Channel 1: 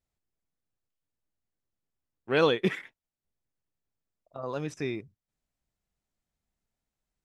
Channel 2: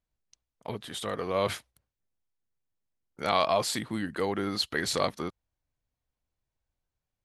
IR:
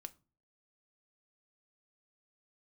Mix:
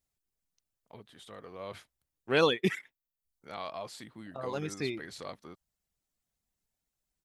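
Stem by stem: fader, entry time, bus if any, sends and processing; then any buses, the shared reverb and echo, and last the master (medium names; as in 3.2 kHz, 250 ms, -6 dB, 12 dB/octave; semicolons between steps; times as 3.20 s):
-1.5 dB, 0.00 s, no send, reverb removal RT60 0.64 s; treble shelf 4.6 kHz +9.5 dB
-14.5 dB, 0.25 s, no send, treble shelf 6.7 kHz -5 dB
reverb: none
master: none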